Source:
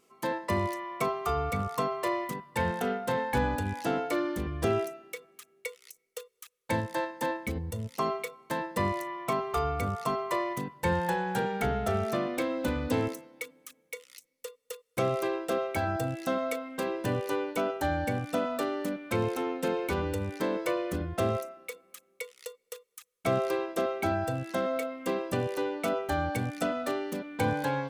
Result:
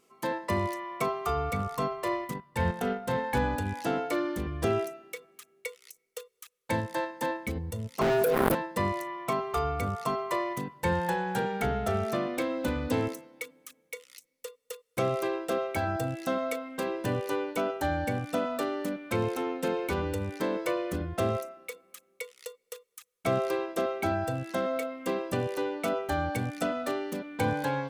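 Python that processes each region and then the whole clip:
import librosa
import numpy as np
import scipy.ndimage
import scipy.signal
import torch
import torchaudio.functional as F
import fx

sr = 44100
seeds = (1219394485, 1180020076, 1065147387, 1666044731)

y = fx.chain(x, sr, fx.low_shelf(hz=110.0, db=11.5),
    fx.transient(attack_db=-3, sustain_db=-7), at=(1.71, 3.24))
y = fx.chain(y, sr, fx.cheby2_bandstop(low_hz=1300.0, high_hz=6600.0, order=4, stop_db=40),
    fx.leveller(passes=5),
    fx.env_flatten(amount_pct=100), at=(8.01, 8.55))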